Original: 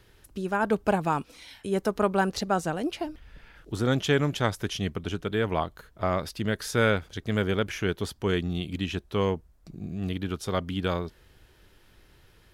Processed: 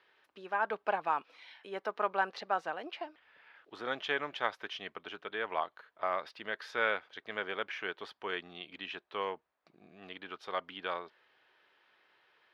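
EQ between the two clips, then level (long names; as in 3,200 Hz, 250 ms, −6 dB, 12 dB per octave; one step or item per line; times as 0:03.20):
high-pass filter 830 Hz 12 dB per octave
high-frequency loss of the air 330 metres
notch filter 1,400 Hz, Q 23
0.0 dB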